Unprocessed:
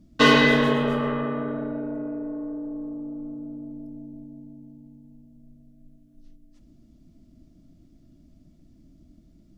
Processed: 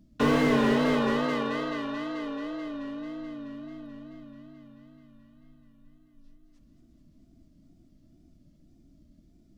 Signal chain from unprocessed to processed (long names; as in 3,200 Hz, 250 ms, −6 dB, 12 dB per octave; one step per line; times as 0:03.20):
feedback echo with a high-pass in the loop 217 ms, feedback 79%, high-pass 240 Hz, level −8 dB
tape wow and flutter 90 cents
slew-rate limiting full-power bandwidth 110 Hz
level −4.5 dB